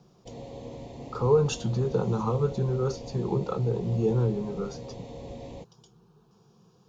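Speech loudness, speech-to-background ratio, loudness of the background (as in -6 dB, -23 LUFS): -27.5 LUFS, 14.0 dB, -41.5 LUFS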